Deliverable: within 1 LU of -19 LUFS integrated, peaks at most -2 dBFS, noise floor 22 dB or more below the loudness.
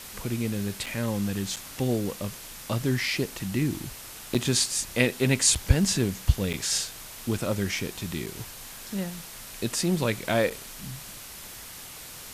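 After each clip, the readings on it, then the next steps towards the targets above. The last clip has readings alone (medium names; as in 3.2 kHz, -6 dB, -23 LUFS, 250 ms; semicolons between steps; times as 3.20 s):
dropouts 7; longest dropout 6.4 ms; noise floor -43 dBFS; noise floor target -50 dBFS; loudness -27.5 LUFS; peak level -6.0 dBFS; loudness target -19.0 LUFS
-> interpolate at 0.86/1.56/4.34/5.55/6.53/8.26/10.50 s, 6.4 ms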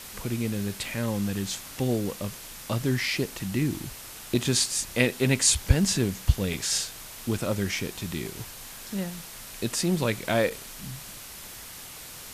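dropouts 0; noise floor -43 dBFS; noise floor target -49 dBFS
-> noise reduction 6 dB, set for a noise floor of -43 dBFS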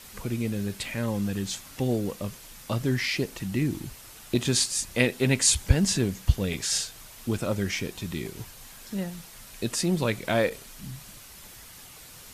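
noise floor -47 dBFS; noise floor target -50 dBFS
-> noise reduction 6 dB, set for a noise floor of -47 dBFS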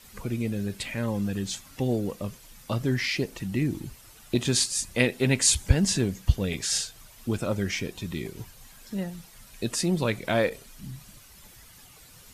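noise floor -52 dBFS; loudness -27.5 LUFS; peak level -6.0 dBFS; loudness target -19.0 LUFS
-> trim +8.5 dB; peak limiter -2 dBFS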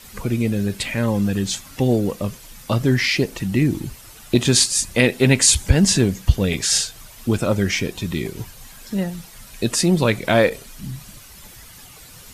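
loudness -19.5 LUFS; peak level -2.0 dBFS; noise floor -43 dBFS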